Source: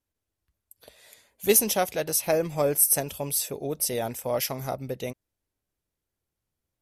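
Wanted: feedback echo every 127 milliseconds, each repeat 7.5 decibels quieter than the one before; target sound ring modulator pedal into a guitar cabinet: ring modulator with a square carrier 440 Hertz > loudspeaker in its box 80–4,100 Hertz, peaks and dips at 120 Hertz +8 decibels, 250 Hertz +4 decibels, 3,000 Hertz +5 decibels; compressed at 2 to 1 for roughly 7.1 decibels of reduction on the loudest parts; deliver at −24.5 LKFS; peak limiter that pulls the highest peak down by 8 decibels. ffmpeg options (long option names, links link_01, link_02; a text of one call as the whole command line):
ffmpeg -i in.wav -af "acompressor=threshold=-28dB:ratio=2,alimiter=limit=-21dB:level=0:latency=1,aecho=1:1:127|254|381|508|635:0.422|0.177|0.0744|0.0312|0.0131,aeval=exprs='val(0)*sgn(sin(2*PI*440*n/s))':channel_layout=same,highpass=80,equalizer=frequency=120:width_type=q:width=4:gain=8,equalizer=frequency=250:width_type=q:width=4:gain=4,equalizer=frequency=3000:width_type=q:width=4:gain=5,lowpass=frequency=4100:width=0.5412,lowpass=frequency=4100:width=1.3066,volume=8.5dB" out.wav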